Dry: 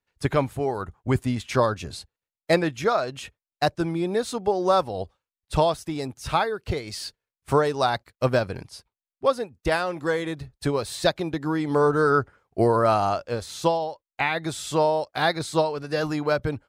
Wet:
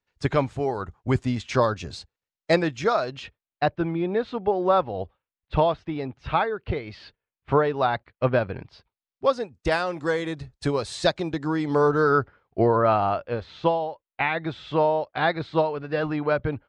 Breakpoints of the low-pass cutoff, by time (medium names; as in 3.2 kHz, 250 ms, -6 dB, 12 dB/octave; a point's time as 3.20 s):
low-pass 24 dB/octave
2.90 s 7 kHz
3.69 s 3.2 kHz
8.58 s 3.2 kHz
9.55 s 8.1 kHz
11.47 s 8.1 kHz
12.79 s 3.3 kHz